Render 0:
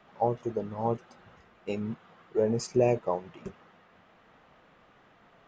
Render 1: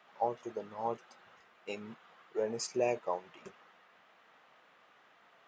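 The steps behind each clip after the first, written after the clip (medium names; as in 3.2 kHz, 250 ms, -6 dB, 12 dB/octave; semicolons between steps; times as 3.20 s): high-pass 1 kHz 6 dB/octave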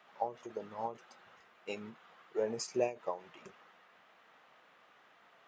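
endings held to a fixed fall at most 190 dB/s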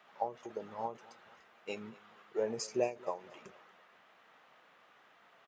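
feedback delay 235 ms, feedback 47%, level -22 dB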